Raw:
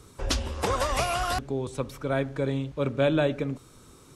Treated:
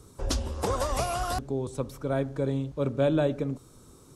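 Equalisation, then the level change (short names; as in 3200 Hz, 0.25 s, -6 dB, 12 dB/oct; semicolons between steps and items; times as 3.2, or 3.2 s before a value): bell 2300 Hz -9 dB 1.7 oct; 0.0 dB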